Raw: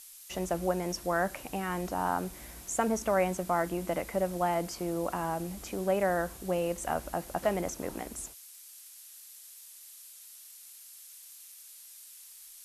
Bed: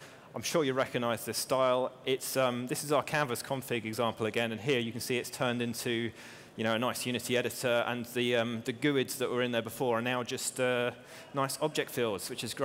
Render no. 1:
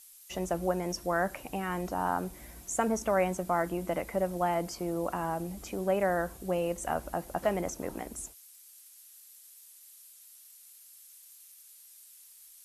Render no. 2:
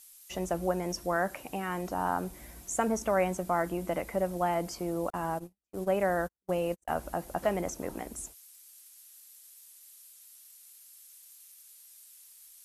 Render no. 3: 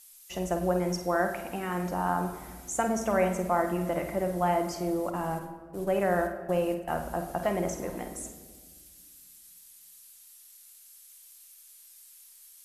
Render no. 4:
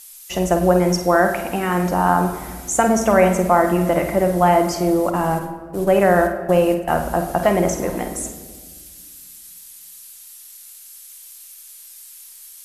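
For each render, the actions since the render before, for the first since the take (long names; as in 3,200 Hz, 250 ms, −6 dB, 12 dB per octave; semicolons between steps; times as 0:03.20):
broadband denoise 6 dB, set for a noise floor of −51 dBFS
0:01.16–0:01.91: low-shelf EQ 74 Hz −10 dB; 0:05.10–0:06.99: noise gate −35 dBFS, range −51 dB
on a send: flutter between parallel walls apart 8.6 metres, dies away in 0.31 s; on the sum: rectangular room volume 1,900 cubic metres, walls mixed, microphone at 0.85 metres
level +12 dB; brickwall limiter −3 dBFS, peak gain reduction 1.5 dB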